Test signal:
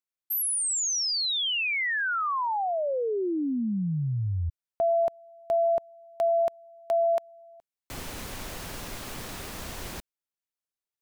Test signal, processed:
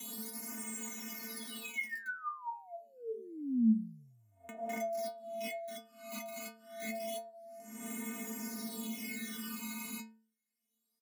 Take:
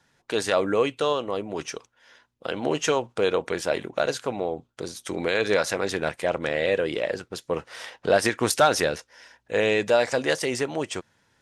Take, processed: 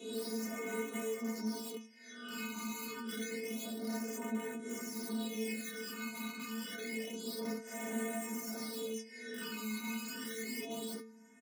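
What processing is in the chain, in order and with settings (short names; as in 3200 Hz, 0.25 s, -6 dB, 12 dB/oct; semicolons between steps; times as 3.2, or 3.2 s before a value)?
spectral swells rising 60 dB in 0.80 s; downsampling 32000 Hz; low shelf 210 Hz -2.5 dB; in parallel at -1.5 dB: limiter -14 dBFS; on the sum: high shelf 5700 Hz +11 dB; compressor 6:1, threshold -25 dBFS; wrapped overs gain 22.5 dB; Chebyshev high-pass 170 Hz, order 3; metallic resonator 220 Hz, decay 0.4 s, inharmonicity 0.008; phaser stages 12, 0.28 Hz, lowest notch 560–4600 Hz; small resonant body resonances 250/2100 Hz, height 18 dB, ringing for 55 ms; three-band squash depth 40%; gain +1 dB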